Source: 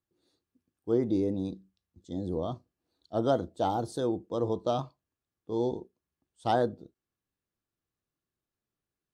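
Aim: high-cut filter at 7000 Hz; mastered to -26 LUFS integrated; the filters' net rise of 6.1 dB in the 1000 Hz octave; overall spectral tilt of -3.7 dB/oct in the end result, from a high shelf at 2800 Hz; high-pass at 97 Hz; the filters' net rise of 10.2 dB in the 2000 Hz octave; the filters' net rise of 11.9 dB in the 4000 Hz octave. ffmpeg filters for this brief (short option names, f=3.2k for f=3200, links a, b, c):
-af "highpass=97,lowpass=7k,equalizer=f=1k:t=o:g=6.5,equalizer=f=2k:t=o:g=8,highshelf=f=2.8k:g=6.5,equalizer=f=4k:t=o:g=7,volume=2.5dB"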